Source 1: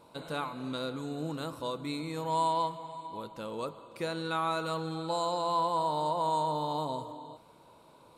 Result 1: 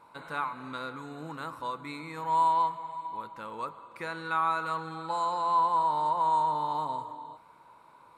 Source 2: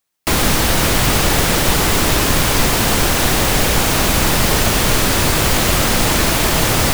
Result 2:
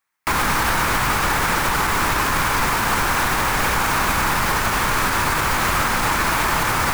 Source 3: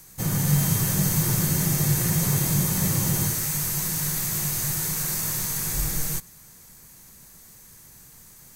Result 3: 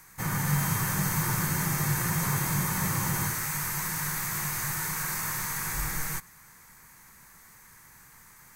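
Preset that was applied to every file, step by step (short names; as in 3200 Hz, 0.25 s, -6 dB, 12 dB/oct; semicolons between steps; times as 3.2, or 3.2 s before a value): band shelf 1400 Hz +11.5 dB; limiter -3 dBFS; dynamic EQ 2000 Hz, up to -5 dB, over -33 dBFS, Q 3.5; gain -6 dB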